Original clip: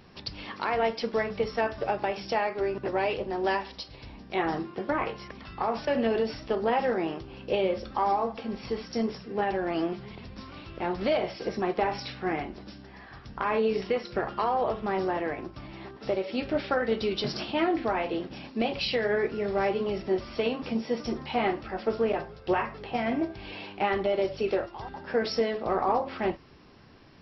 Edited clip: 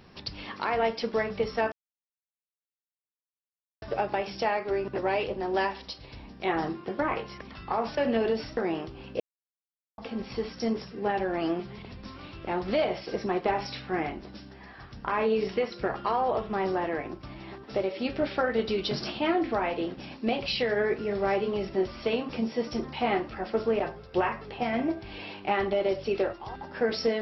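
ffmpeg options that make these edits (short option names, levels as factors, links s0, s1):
-filter_complex "[0:a]asplit=5[s0][s1][s2][s3][s4];[s0]atrim=end=1.72,asetpts=PTS-STARTPTS,afade=t=out:st=1.716:d=0.004:c=hsin,apad=pad_dur=2.1[s5];[s1]atrim=start=1.72:end=6.472,asetpts=PTS-STARTPTS,afade=t=in:d=0.004:c=hsin[s6];[s2]atrim=start=6.898:end=7.53,asetpts=PTS-STARTPTS,afade=t=out:st=0.628:d=0.004:c=hsin[s7];[s3]atrim=start=7.53:end=8.31,asetpts=PTS-STARTPTS,volume=0[s8];[s4]atrim=start=8.31,asetpts=PTS-STARTPTS,afade=t=in:d=0.004:c=hsin[s9];[s5][s6]concat=n=2:v=0:a=1[s10];[s7][s8][s9]concat=n=3:v=0:a=1[s11];[s10][s11]acrossfade=d=0.004:c1=hsin:c2=hsin"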